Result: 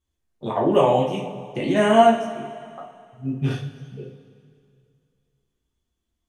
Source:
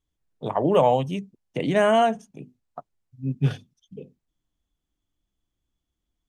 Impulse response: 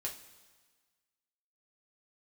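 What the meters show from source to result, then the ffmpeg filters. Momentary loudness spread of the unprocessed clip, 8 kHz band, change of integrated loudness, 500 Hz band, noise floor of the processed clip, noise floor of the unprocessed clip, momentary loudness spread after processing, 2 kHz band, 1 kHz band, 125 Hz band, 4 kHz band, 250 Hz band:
16 LU, n/a, +2.5 dB, +2.5 dB, -79 dBFS, -82 dBFS, 23 LU, +2.0 dB, +3.5 dB, -0.5 dB, +3.0 dB, +4.0 dB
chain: -filter_complex "[1:a]atrim=start_sample=2205,asetrate=28224,aresample=44100[a];[0:a][a]afir=irnorm=-1:irlink=0"

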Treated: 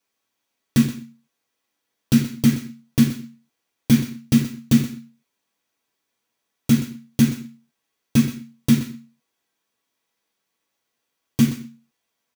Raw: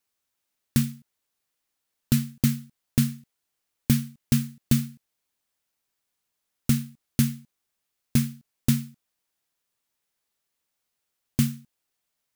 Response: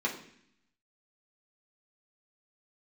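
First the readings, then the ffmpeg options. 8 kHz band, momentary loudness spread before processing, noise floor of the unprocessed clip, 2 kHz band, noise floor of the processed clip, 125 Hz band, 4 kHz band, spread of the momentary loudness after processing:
+2.0 dB, 11 LU, -81 dBFS, +6.5 dB, -79 dBFS, +2.5 dB, +4.5 dB, 15 LU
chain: -filter_complex "[0:a]aecho=1:1:125:0.2[a];[1:a]atrim=start_sample=2205,atrim=end_sample=6174[b];[a][b]afir=irnorm=-1:irlink=0"

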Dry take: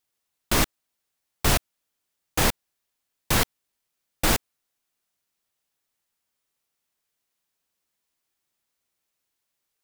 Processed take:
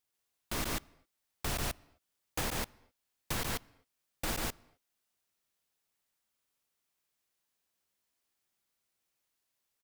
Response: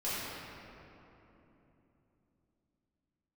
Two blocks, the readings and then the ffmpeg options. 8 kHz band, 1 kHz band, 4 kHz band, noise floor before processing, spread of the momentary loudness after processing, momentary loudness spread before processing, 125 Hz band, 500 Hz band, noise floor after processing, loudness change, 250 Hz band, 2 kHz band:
-11.5 dB, -11.5 dB, -11.5 dB, -81 dBFS, 7 LU, 6 LU, -11.5 dB, -11.5 dB, -84 dBFS, -12.5 dB, -11.5 dB, -11.5 dB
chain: -filter_complex "[0:a]acrusher=bits=4:mode=log:mix=0:aa=0.000001,aecho=1:1:140:0.708,alimiter=limit=-18.5dB:level=0:latency=1:release=476,asplit=2[a][b];[1:a]atrim=start_sample=2205,afade=t=out:st=0.32:d=0.01,atrim=end_sample=14553[c];[b][c]afir=irnorm=-1:irlink=0,volume=-29.5dB[d];[a][d]amix=inputs=2:normalize=0,volume=-4.5dB"

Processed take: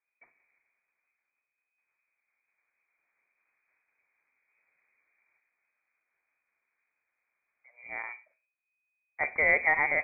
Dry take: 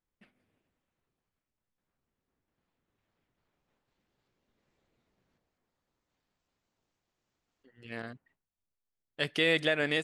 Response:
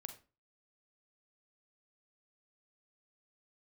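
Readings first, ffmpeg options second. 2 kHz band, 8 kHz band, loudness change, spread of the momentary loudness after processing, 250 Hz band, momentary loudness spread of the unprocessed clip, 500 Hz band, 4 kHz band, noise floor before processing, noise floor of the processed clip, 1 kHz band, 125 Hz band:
+6.0 dB, under -20 dB, +2.0 dB, 17 LU, -12.5 dB, 18 LU, -3.0 dB, under -40 dB, under -85 dBFS, under -85 dBFS, +12.0 dB, under -10 dB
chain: -filter_complex "[0:a]aeval=exprs='0.224*(cos(1*acos(clip(val(0)/0.224,-1,1)))-cos(1*PI/2))+0.00631*(cos(7*acos(clip(val(0)/0.224,-1,1)))-cos(7*PI/2))':c=same,asplit=2[a][b];[1:a]atrim=start_sample=2205,lowpass=2.5k[c];[b][c]afir=irnorm=-1:irlink=0,volume=2.5dB[d];[a][d]amix=inputs=2:normalize=0,lowpass=f=2.1k:t=q:w=0.5098,lowpass=f=2.1k:t=q:w=0.6013,lowpass=f=2.1k:t=q:w=0.9,lowpass=f=2.1k:t=q:w=2.563,afreqshift=-2500"

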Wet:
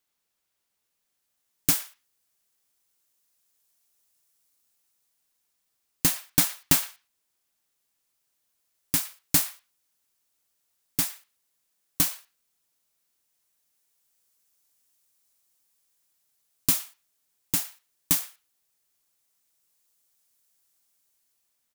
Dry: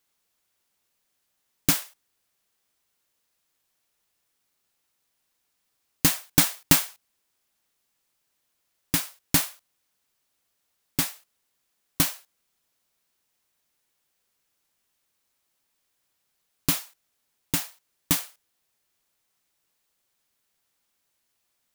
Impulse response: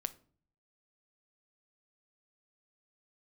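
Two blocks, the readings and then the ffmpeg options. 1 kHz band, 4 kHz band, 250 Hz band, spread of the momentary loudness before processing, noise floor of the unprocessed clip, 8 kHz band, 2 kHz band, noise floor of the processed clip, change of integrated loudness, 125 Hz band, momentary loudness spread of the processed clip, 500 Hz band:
-4.5 dB, -3.0 dB, -4.5 dB, 14 LU, -76 dBFS, 0.0 dB, -4.5 dB, -79 dBFS, -0.5 dB, -4.5 dB, 16 LU, -4.5 dB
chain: -filter_complex "[0:a]acrossover=split=850|5300[a][b][c];[b]aecho=1:1:112:0.178[d];[c]dynaudnorm=f=570:g=5:m=11.5dB[e];[a][d][e]amix=inputs=3:normalize=0,volume=-4.5dB"

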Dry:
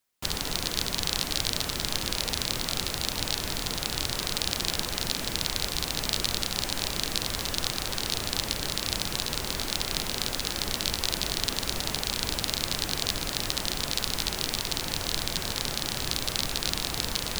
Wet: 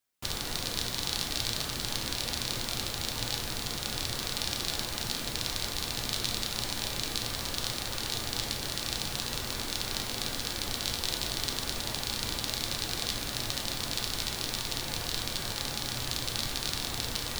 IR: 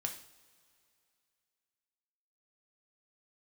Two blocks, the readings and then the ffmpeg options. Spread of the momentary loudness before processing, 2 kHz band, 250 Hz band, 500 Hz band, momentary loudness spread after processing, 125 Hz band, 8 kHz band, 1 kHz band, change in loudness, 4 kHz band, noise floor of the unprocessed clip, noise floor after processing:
2 LU, -3.0 dB, -3.5 dB, -4.0 dB, 2 LU, -2.5 dB, -3.5 dB, -3.0 dB, -3.5 dB, -3.5 dB, -35 dBFS, -37 dBFS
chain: -filter_complex "[1:a]atrim=start_sample=2205[a];[0:a][a]afir=irnorm=-1:irlink=0,volume=-3.5dB"

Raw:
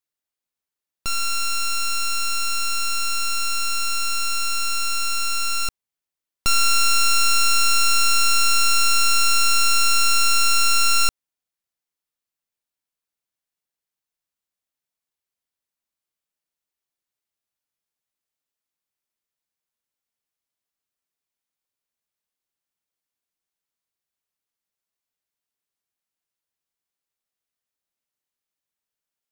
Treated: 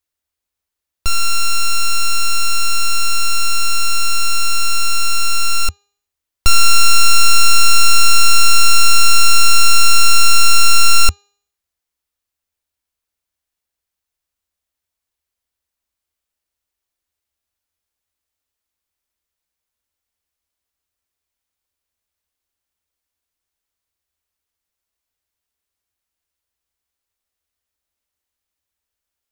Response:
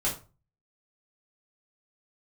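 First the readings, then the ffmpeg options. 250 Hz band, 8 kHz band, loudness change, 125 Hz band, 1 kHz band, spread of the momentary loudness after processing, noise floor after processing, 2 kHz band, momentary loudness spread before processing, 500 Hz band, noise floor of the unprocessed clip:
+4.5 dB, +5.5 dB, +5.5 dB, n/a, +5.5 dB, 6 LU, -83 dBFS, +5.5 dB, 6 LU, +5.0 dB, under -85 dBFS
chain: -af "lowshelf=f=100:t=q:w=3:g=7,bandreject=f=405.7:t=h:w=4,bandreject=f=811.4:t=h:w=4,bandreject=f=1.2171k:t=h:w=4,bandreject=f=1.6228k:t=h:w=4,bandreject=f=2.0285k:t=h:w=4,bandreject=f=2.4342k:t=h:w=4,bandreject=f=2.8399k:t=h:w=4,bandreject=f=3.2456k:t=h:w=4,bandreject=f=3.6513k:t=h:w=4,bandreject=f=4.057k:t=h:w=4,bandreject=f=4.4627k:t=h:w=4,bandreject=f=4.8684k:t=h:w=4,bandreject=f=5.2741k:t=h:w=4,bandreject=f=5.6798k:t=h:w=4,bandreject=f=6.0855k:t=h:w=4,bandreject=f=6.4912k:t=h:w=4,bandreject=f=6.8969k:t=h:w=4,bandreject=f=7.3026k:t=h:w=4,bandreject=f=7.7083k:t=h:w=4,volume=5.5dB"

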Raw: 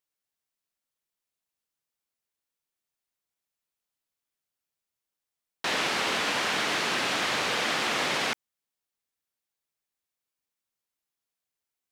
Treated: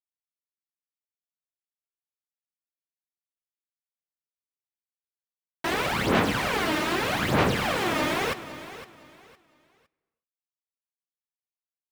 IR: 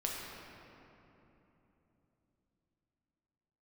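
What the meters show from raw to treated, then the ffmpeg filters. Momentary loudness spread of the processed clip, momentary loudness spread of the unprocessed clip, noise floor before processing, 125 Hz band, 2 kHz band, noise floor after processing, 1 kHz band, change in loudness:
14 LU, 4 LU, under -85 dBFS, +14.0 dB, 0.0 dB, under -85 dBFS, +3.0 dB, +1.0 dB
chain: -filter_complex "[0:a]aemphasis=mode=reproduction:type=riaa,aeval=exprs='val(0)*gte(abs(val(0)),0.02)':c=same,aphaser=in_gain=1:out_gain=1:delay=3.3:decay=0.63:speed=0.81:type=sinusoidal,aecho=1:1:510|1020|1530:0.188|0.049|0.0127,asplit=2[a][b];[1:a]atrim=start_sample=2205,afade=t=out:st=0.42:d=0.01,atrim=end_sample=18963,adelay=15[c];[b][c]afir=irnorm=-1:irlink=0,volume=-20dB[d];[a][d]amix=inputs=2:normalize=0"

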